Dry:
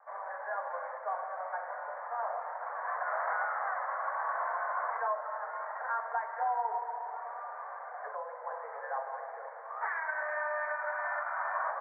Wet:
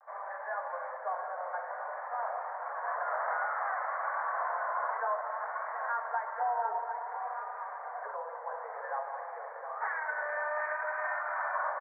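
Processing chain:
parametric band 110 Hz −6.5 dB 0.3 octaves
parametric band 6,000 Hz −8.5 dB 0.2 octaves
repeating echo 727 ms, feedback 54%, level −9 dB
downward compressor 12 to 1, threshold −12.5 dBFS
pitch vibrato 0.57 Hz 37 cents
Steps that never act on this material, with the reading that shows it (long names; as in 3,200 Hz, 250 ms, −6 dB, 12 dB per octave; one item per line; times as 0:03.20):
parametric band 110 Hz: nothing at its input below 400 Hz
parametric band 6,000 Hz: nothing at its input above 2,200 Hz
downward compressor, threshold −12.5 dBFS: peak of its input −21.0 dBFS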